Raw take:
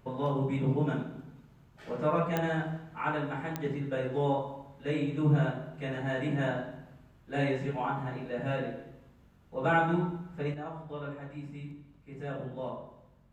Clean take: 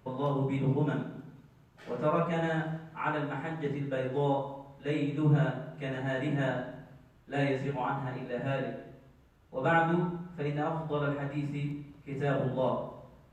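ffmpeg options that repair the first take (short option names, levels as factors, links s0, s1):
-af "adeclick=t=4,bandreject=f=46:t=h:w=4,bandreject=f=92:t=h:w=4,bandreject=f=138:t=h:w=4,bandreject=f=184:t=h:w=4,bandreject=f=230:t=h:w=4,asetnsamples=n=441:p=0,asendcmd='10.54 volume volume 8dB',volume=1"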